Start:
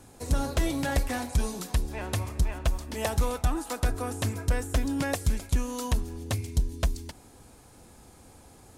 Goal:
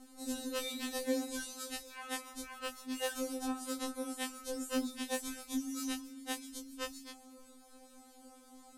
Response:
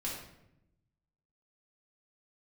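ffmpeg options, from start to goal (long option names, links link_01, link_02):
-af "afftfilt=real='re':imag='-im':win_size=2048:overlap=0.75,afftfilt=real='re*3.46*eq(mod(b,12),0)':imag='im*3.46*eq(mod(b,12),0)':win_size=2048:overlap=0.75"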